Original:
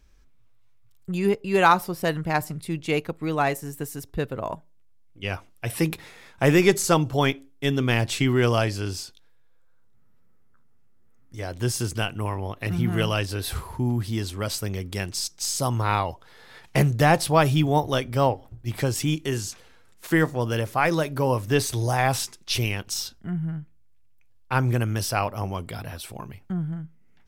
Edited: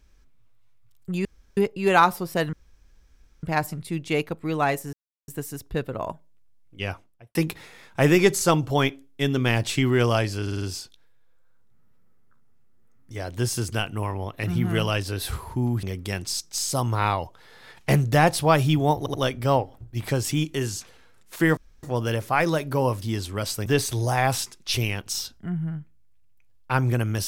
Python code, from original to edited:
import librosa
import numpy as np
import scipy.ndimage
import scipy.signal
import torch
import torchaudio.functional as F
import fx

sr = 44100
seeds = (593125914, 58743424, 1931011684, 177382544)

y = fx.studio_fade_out(x, sr, start_s=5.24, length_s=0.54)
y = fx.edit(y, sr, fx.insert_room_tone(at_s=1.25, length_s=0.32),
    fx.insert_room_tone(at_s=2.21, length_s=0.9),
    fx.insert_silence(at_s=3.71, length_s=0.35),
    fx.stutter(start_s=8.85, slice_s=0.05, count=5),
    fx.move(start_s=14.06, length_s=0.64, to_s=21.47),
    fx.stutter(start_s=17.85, slice_s=0.08, count=3),
    fx.insert_room_tone(at_s=20.28, length_s=0.26), tone=tone)